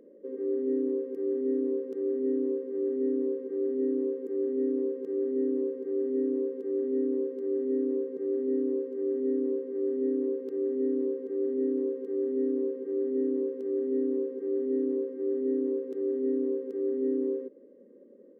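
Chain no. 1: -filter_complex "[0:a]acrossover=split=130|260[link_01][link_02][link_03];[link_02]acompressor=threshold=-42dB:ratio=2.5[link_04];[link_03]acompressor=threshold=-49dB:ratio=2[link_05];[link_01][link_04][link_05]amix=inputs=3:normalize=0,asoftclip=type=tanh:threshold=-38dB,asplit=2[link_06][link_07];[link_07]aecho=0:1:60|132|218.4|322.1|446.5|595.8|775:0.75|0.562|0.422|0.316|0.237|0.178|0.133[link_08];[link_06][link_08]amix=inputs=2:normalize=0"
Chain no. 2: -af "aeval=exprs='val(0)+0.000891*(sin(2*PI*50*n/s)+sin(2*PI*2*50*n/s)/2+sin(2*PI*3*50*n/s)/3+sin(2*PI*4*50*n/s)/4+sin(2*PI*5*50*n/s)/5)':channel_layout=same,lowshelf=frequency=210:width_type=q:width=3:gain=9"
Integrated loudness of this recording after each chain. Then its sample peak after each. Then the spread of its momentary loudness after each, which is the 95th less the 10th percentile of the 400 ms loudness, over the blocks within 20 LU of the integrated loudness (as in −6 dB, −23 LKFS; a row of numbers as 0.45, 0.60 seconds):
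−40.0, −34.0 LKFS; −29.0, −23.0 dBFS; 2, 3 LU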